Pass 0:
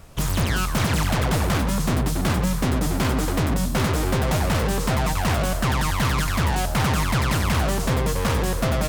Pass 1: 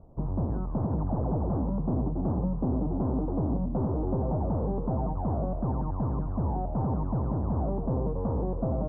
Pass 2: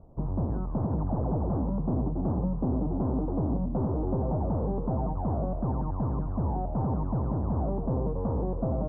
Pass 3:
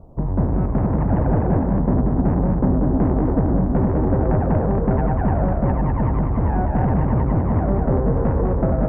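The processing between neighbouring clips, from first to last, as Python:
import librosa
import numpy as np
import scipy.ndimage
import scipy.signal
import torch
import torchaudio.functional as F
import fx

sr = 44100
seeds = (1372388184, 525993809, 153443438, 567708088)

y1 = scipy.signal.sosfilt(scipy.signal.butter(6, 920.0, 'lowpass', fs=sr, output='sos'), x)
y1 = fx.peak_eq(y1, sr, hz=280.0, db=4.0, octaves=0.94)
y1 = y1 * librosa.db_to_amplitude(-7.0)
y2 = y1
y3 = fx.tracing_dist(y2, sr, depth_ms=0.19)
y3 = y3 + 10.0 ** (-3.5 / 20.0) * np.pad(y3, (int(202 * sr / 1000.0), 0))[:len(y3)]
y3 = y3 * librosa.db_to_amplitude(8.5)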